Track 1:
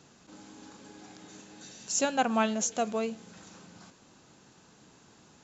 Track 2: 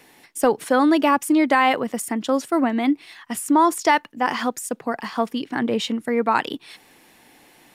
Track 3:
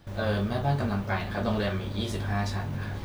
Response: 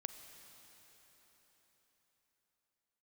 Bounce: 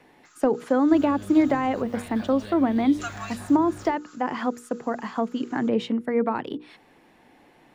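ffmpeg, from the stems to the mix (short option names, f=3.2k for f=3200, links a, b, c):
-filter_complex "[0:a]highpass=f=1.3k:t=q:w=6.7,aemphasis=mode=production:type=50kf,aecho=1:1:5.6:0.88,adelay=250,volume=-6.5dB,asplit=3[a][b][c];[a]atrim=end=1.82,asetpts=PTS-STARTPTS,afade=t=out:st=1.816:d=0.004:c=hsin[d];[b]atrim=start=1.82:end=3,asetpts=PTS-STARTPTS,volume=0[e];[c]atrim=start=3,asetpts=PTS-STARTPTS,afade=t=in:d=0.004:c=hsin[f];[d][e][f]concat=n=3:v=0:a=1[g];[1:a]lowpass=f=1.1k:p=1,volume=0.5dB[h];[2:a]acrossover=split=180|2300[i][j][k];[i]acompressor=threshold=-41dB:ratio=4[l];[j]acompressor=threshold=-37dB:ratio=4[m];[k]acompressor=threshold=-43dB:ratio=4[n];[l][m][n]amix=inputs=3:normalize=0,adelay=850,volume=-3dB[o];[g][h][o]amix=inputs=3:normalize=0,acrossover=split=480[p][q];[q]acompressor=threshold=-25dB:ratio=10[r];[p][r]amix=inputs=2:normalize=0,bandreject=f=60:t=h:w=6,bandreject=f=120:t=h:w=6,bandreject=f=180:t=h:w=6,bandreject=f=240:t=h:w=6,bandreject=f=300:t=h:w=6,bandreject=f=360:t=h:w=6,bandreject=f=420:t=h:w=6,bandreject=f=480:t=h:w=6"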